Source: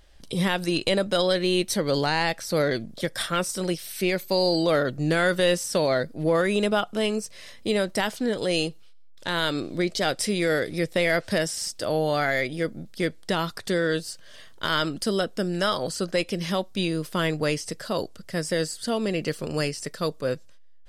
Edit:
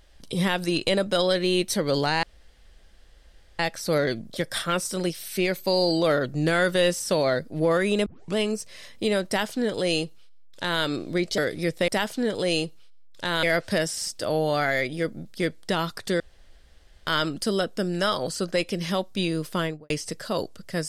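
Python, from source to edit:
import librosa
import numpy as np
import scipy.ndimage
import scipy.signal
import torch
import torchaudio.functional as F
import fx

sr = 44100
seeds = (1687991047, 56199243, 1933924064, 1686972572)

y = fx.studio_fade_out(x, sr, start_s=17.14, length_s=0.36)
y = fx.edit(y, sr, fx.insert_room_tone(at_s=2.23, length_s=1.36),
    fx.tape_start(start_s=6.7, length_s=0.3),
    fx.duplicate(start_s=7.91, length_s=1.55, to_s=11.03),
    fx.cut(start_s=10.02, length_s=0.51),
    fx.room_tone_fill(start_s=13.8, length_s=0.87), tone=tone)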